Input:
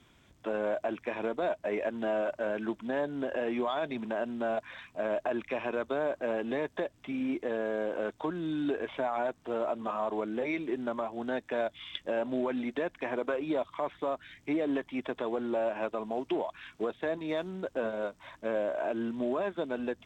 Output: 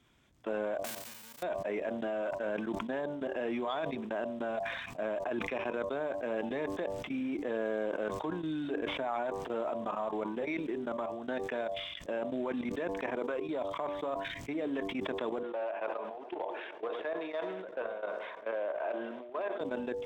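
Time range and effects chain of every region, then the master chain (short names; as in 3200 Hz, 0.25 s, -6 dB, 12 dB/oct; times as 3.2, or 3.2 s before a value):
0.84–1.41 spectral whitening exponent 0.1 + notch comb 340 Hz + compressor, threshold -45 dBFS
15.43–19.61 hard clip -24 dBFS + three-band isolator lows -24 dB, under 380 Hz, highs -19 dB, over 3600 Hz + darkening echo 91 ms, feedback 74%, low-pass 4400 Hz, level -16 dB
whole clip: level quantiser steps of 17 dB; de-hum 97.29 Hz, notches 12; sustainer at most 37 dB/s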